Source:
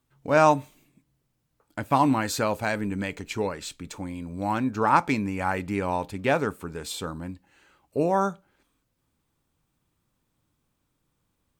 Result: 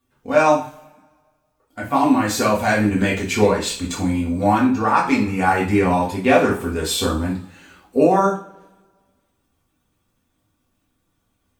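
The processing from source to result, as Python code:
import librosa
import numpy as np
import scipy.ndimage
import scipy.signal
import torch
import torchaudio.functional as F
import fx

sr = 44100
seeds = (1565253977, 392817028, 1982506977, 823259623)

y = fx.spec_quant(x, sr, step_db=15)
y = fx.rider(y, sr, range_db=5, speed_s=0.5)
y = fx.rev_double_slope(y, sr, seeds[0], early_s=0.4, late_s=1.6, knee_db=-26, drr_db=-4.5)
y = F.gain(torch.from_numpy(y), 2.5).numpy()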